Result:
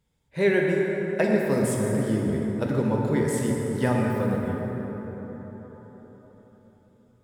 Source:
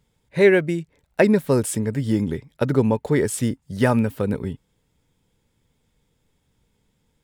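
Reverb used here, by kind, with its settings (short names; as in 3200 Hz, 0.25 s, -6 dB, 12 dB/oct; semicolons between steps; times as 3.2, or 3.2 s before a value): plate-style reverb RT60 4.8 s, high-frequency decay 0.4×, DRR -2 dB; gain -7.5 dB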